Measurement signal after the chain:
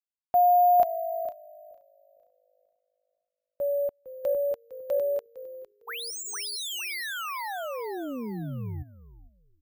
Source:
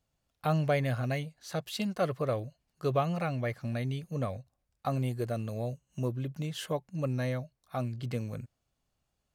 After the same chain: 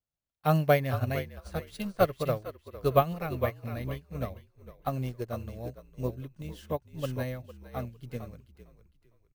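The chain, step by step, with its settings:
bad sample-rate conversion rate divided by 3×, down none, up hold
echo with shifted repeats 456 ms, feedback 37%, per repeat −52 Hz, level −6 dB
expander for the loud parts 2.5 to 1, over −39 dBFS
level +7.5 dB

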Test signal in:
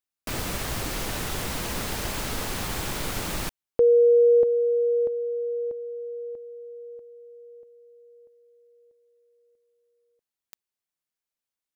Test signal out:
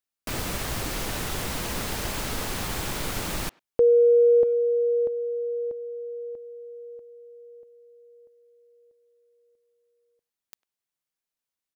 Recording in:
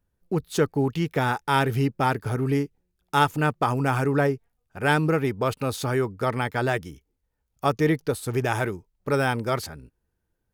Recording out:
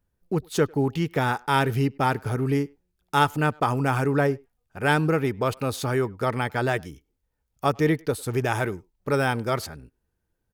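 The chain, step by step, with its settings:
far-end echo of a speakerphone 100 ms, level −26 dB

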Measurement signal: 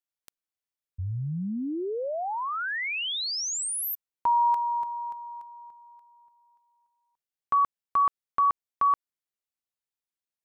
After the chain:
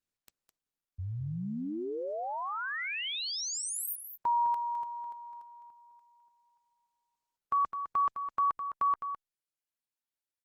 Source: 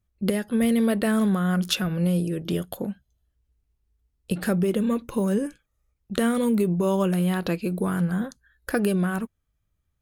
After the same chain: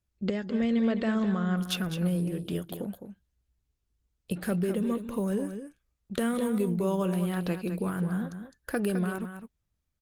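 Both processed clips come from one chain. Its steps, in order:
on a send: single-tap delay 209 ms −9 dB
on the sum: level −5.5 dB
Opus 24 kbit/s 48,000 Hz

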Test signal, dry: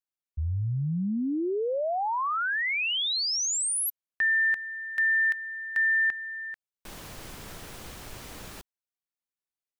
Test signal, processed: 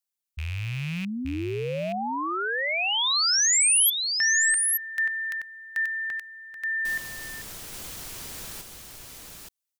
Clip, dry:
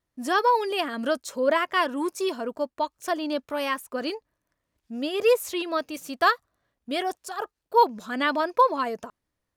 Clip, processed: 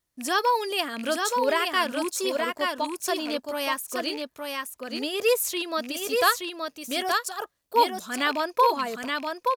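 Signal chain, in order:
loose part that buzzes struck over −37 dBFS, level −27 dBFS
high-shelf EQ 3,300 Hz +12 dB
single-tap delay 874 ms −4 dB
level −3 dB

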